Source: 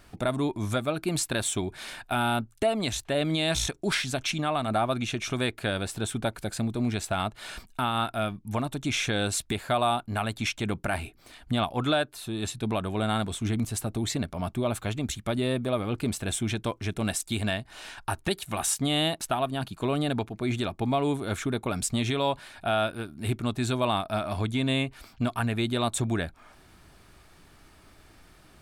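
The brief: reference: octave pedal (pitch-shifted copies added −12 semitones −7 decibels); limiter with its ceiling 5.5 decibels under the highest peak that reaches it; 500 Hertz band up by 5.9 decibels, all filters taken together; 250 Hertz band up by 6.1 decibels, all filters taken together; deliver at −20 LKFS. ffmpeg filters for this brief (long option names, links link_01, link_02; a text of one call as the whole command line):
ffmpeg -i in.wav -filter_complex "[0:a]equalizer=frequency=250:width_type=o:gain=5.5,equalizer=frequency=500:width_type=o:gain=6.5,alimiter=limit=-15dB:level=0:latency=1,asplit=2[link_01][link_02];[link_02]asetrate=22050,aresample=44100,atempo=2,volume=-7dB[link_03];[link_01][link_03]amix=inputs=2:normalize=0,volume=5.5dB" out.wav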